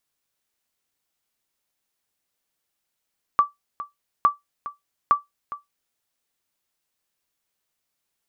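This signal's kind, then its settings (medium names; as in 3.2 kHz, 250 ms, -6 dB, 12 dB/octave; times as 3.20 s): sonar ping 1.16 kHz, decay 0.16 s, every 0.86 s, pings 3, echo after 0.41 s, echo -15.5 dB -8 dBFS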